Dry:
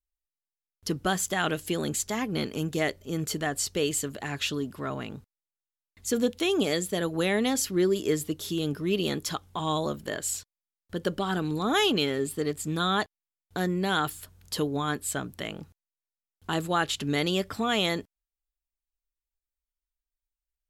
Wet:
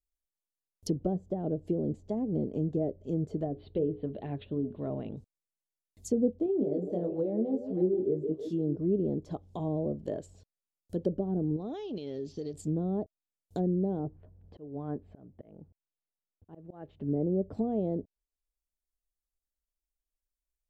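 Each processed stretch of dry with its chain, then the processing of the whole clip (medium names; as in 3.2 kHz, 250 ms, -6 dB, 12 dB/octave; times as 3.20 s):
3.45–5.17 s: steep low-pass 3.9 kHz 72 dB/octave + hum notches 60/120/180/240/300/360/420/480 Hz
6.46–8.76 s: high-pass 120 Hz + chorus 1 Hz, delay 18 ms, depth 4.5 ms + repeats whose band climbs or falls 158 ms, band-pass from 360 Hz, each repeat 0.7 oct, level -6 dB
11.56–12.54 s: elliptic low-pass 5.8 kHz + tone controls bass -1 dB, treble +13 dB + compression 3:1, threshold -34 dBFS
13.99–17.48 s: low-pass 1.9 kHz 24 dB/octave + slow attack 503 ms
whole clip: low-pass that closes with the level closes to 550 Hz, closed at -25 dBFS; FFT filter 640 Hz 0 dB, 1.3 kHz -22 dB, 2.1 kHz -19 dB, 6.9 kHz -2 dB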